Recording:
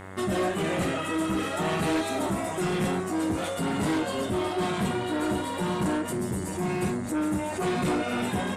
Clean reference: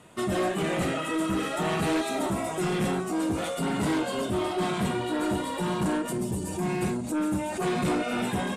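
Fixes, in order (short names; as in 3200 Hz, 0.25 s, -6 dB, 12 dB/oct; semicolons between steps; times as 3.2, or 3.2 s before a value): de-click; de-hum 95.1 Hz, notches 23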